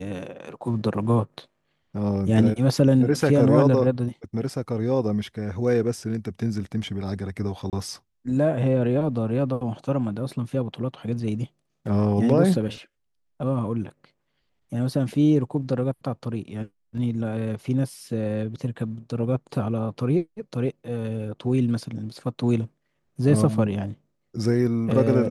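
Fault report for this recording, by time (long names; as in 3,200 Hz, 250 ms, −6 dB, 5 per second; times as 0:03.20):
0:07.70–0:07.73: drop-out 28 ms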